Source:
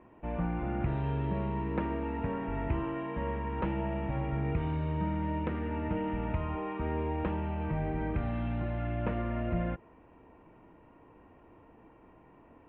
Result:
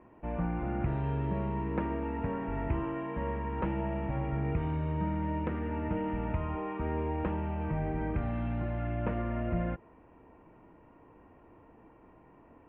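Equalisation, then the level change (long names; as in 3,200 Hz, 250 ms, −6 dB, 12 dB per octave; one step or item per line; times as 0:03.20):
low-pass filter 2,800 Hz 12 dB per octave
0.0 dB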